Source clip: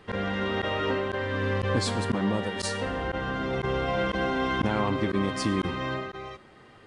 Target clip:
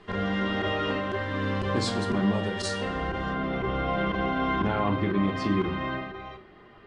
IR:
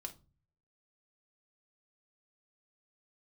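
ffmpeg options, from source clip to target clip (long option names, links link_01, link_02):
-filter_complex "[0:a]asetnsamples=nb_out_samples=441:pad=0,asendcmd='3.33 lowpass f 3200',lowpass=7700[link_01];[1:a]atrim=start_sample=2205,afade=type=out:start_time=0.18:duration=0.01,atrim=end_sample=8379[link_02];[link_01][link_02]afir=irnorm=-1:irlink=0,volume=4dB"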